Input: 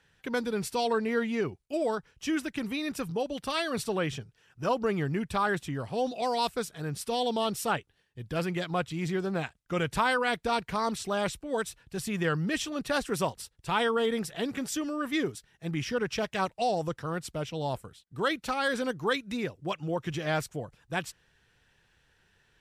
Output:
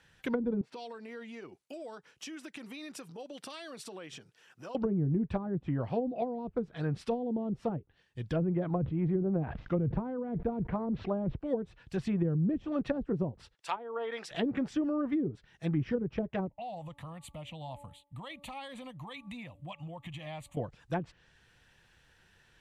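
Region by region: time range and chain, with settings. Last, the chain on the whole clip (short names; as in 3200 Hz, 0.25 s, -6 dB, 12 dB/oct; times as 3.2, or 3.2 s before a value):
0.61–4.75 compressor 8:1, threshold -42 dBFS + HPF 250 Hz
8.36–11.36 air absorption 240 m + sustainer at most 69 dB/s
13.55–14.31 HPF 760 Hz + high shelf 6100 Hz -6 dB
16.49–20.57 de-hum 286.7 Hz, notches 4 + compressor 3:1, threshold -41 dBFS + fixed phaser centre 1500 Hz, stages 6
whole clip: treble ducked by the level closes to 310 Hz, closed at -25.5 dBFS; notch 420 Hz, Q 12; dynamic EQ 1300 Hz, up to -3 dB, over -53 dBFS, Q 1.3; gain +2.5 dB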